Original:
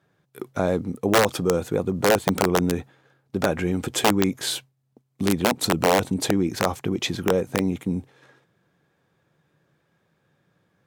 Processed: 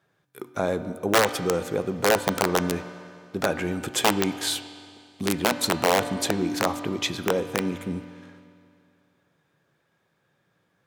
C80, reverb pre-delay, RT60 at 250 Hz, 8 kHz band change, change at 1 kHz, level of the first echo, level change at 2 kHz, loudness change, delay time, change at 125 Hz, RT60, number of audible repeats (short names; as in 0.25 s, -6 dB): 13.0 dB, 3 ms, 2.3 s, 0.0 dB, -1.0 dB, none, 0.0 dB, -2.0 dB, none, -5.5 dB, 2.3 s, none